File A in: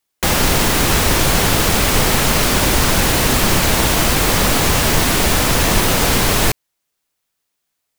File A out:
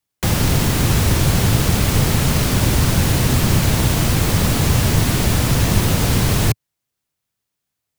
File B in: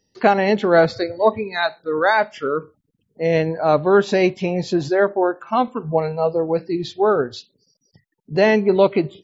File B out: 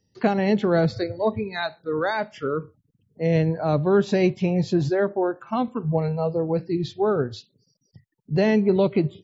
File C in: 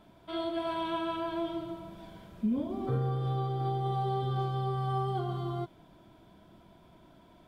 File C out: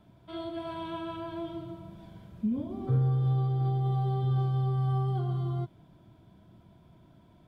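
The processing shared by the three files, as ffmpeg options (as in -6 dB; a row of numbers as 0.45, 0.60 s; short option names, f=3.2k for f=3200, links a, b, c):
-filter_complex "[0:a]equalizer=f=110:t=o:w=1.8:g=12.5,acrossover=split=460|3000[a][b][c];[b]acompressor=threshold=-20dB:ratio=2.5[d];[a][d][c]amix=inputs=3:normalize=0,volume=-5.5dB"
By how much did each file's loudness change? -2.5, -4.5, +2.5 LU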